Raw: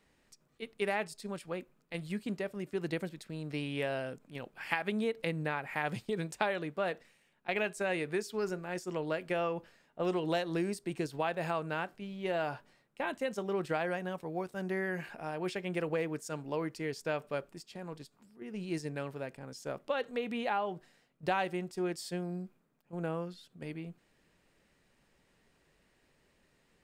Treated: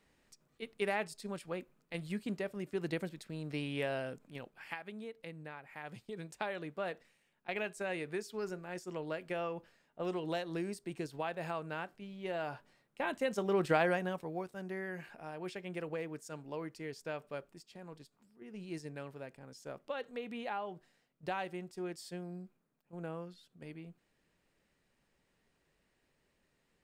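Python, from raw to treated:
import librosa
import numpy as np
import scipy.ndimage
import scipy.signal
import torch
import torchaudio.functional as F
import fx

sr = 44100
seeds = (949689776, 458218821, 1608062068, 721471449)

y = fx.gain(x, sr, db=fx.line((4.29, -1.5), (4.89, -13.0), (5.76, -13.0), (6.65, -5.0), (12.38, -5.0), (13.81, 4.5), (14.64, -6.5)))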